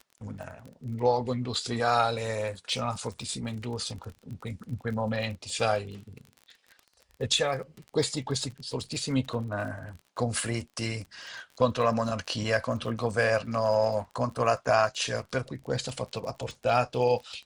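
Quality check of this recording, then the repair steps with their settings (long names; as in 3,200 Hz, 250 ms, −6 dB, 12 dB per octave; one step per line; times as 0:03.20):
surface crackle 27 per second −37 dBFS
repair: click removal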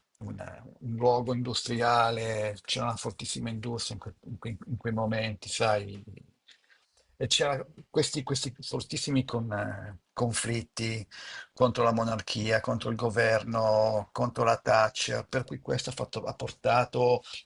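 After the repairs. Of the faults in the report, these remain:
none of them is left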